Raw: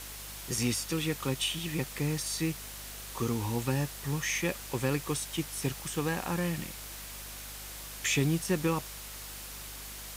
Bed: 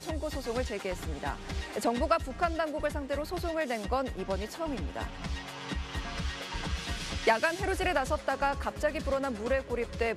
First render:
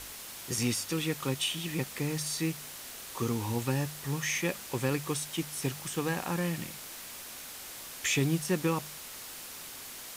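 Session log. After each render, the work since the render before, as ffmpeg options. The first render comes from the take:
-af "bandreject=f=50:t=h:w=4,bandreject=f=100:t=h:w=4,bandreject=f=150:t=h:w=4,bandreject=f=200:t=h:w=4"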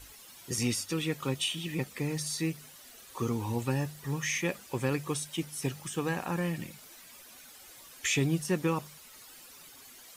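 -af "afftdn=nr=12:nf=-45"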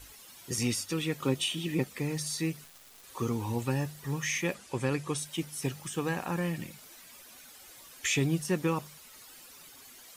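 -filter_complex "[0:a]asettb=1/sr,asplit=3[a][b][c];[a]atrim=end=1.204[d];[b]atrim=start=1.2:end=1.85,asetpts=PTS-STARTPTS,afade=t=in:d=0.004:c=qsin,afade=t=out:st=0.646:d=0.004:c=qsin,equalizer=f=320:t=o:w=1.5:g=6[e];[c]atrim=start=1.846[f];[d][e]acrossfade=d=0.004:c1=hsin:c2=qsin[g];[g][f]acrossfade=d=0.004:c1=qsin:c2=hsin,asettb=1/sr,asplit=3[h][i][j];[h]atrim=end=2.644[k];[i]atrim=start=2.64:end=3.04,asetpts=PTS-STARTPTS,afade=t=in:d=0.004:c=qsin,afade=t=out:st=0.396:d=0.004:c=qsin,acrusher=bits=5:dc=4:mix=0:aa=0.000001[l];[j]atrim=start=3.036[m];[k][l]acrossfade=d=0.004:c1=hsin:c2=qsin[n];[n][m]acrossfade=d=0.004:c1=qsin:c2=hsin,asettb=1/sr,asplit=3[o][p][q];[o]atrim=end=4.544[r];[p]atrim=start=4.54:end=5.18,asetpts=PTS-STARTPTS,afade=t=in:d=0.004:c=qsin,afade=t=out:st=0.636:d=0.004:c=qsin,lowpass=f=11k:w=0.5412,lowpass=f=11k:w=1.3066[s];[q]atrim=start=5.176[t];[r][s]acrossfade=d=0.004:c1=hsin:c2=qsin[u];[u][t]acrossfade=d=0.004:c1=qsin:c2=hsin"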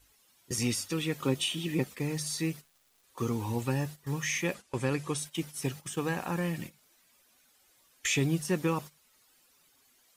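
-af "agate=range=-14dB:threshold=-40dB:ratio=16:detection=peak"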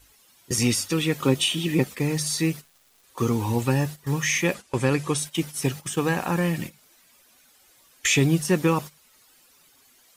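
-af "volume=8dB"

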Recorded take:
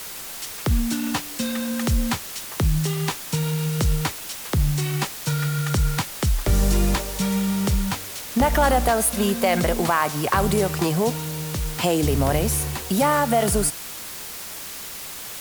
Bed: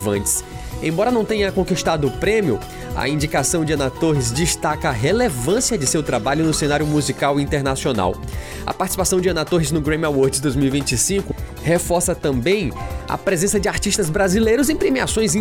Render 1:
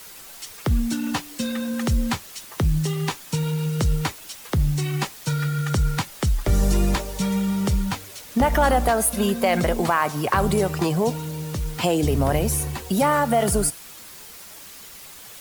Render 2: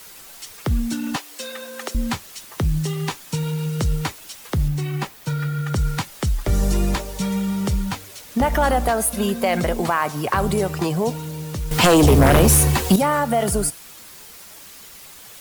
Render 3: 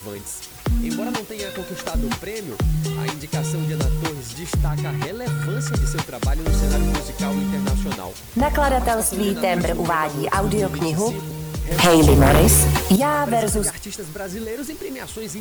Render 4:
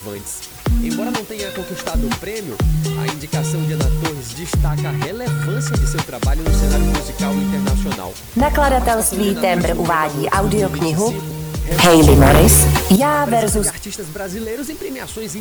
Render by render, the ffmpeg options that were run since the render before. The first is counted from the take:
-af "afftdn=nr=8:nf=-35"
-filter_complex "[0:a]asettb=1/sr,asplit=3[a][b][c];[a]atrim=end=1.164[d];[b]atrim=start=1.16:end=1.95,asetpts=PTS-STARTPTS,afade=t=in:d=0.004:c=qsin,afade=t=out:st=0.786:d=0.004:c=qsin,highpass=f=400:w=0.5412,highpass=f=400:w=1.3066[e];[c]atrim=start=1.946[f];[d][e]acrossfade=d=0.004:c1=hsin:c2=qsin[g];[g][f]acrossfade=d=0.004:c1=qsin:c2=hsin,asettb=1/sr,asplit=3[h][i][j];[h]atrim=end=4.684[k];[i]atrim=start=4.68:end=5.76,asetpts=PTS-STARTPTS,afade=t=in:d=0.004:c=qsin,afade=t=out:st=1.076:d=0.004:c=qsin,equalizer=f=7.2k:t=o:w=2.3:g=-6.5[l];[j]atrim=start=5.756[m];[k][l]acrossfade=d=0.004:c1=hsin:c2=qsin[n];[n][m]acrossfade=d=0.004:c1=qsin:c2=hsin,asettb=1/sr,asplit=3[o][p][q];[o]atrim=end=11.714[r];[p]atrim=start=11.71:end=12.96,asetpts=PTS-STARTPTS,afade=t=in:d=0.004:c=qsin,afade=t=out:st=1.246:d=0.004:c=qsin,aeval=exprs='0.376*sin(PI/2*2.51*val(0)/0.376)':c=same[s];[q]atrim=start=12.956[t];[r][s]acrossfade=d=0.004:c1=hsin:c2=qsin[u];[u][t]acrossfade=d=0.004:c1=qsin:c2=hsin"
-filter_complex "[1:a]volume=-13.5dB[a];[0:a][a]amix=inputs=2:normalize=0"
-af "volume=4dB"

